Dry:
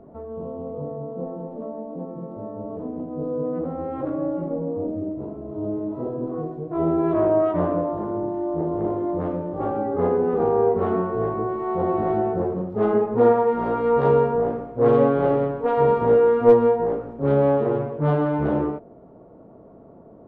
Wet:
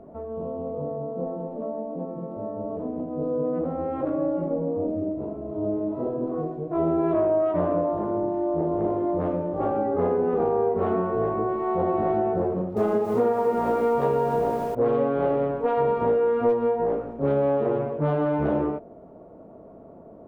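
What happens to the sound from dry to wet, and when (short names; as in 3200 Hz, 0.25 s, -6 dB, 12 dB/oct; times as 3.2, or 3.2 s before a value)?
12.48–14.75 lo-fi delay 0.286 s, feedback 55%, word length 7-bit, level -9 dB
whole clip: thirty-one-band EQ 125 Hz -5 dB, 630 Hz +4 dB, 2500 Hz +3 dB; compressor, threshold -19 dBFS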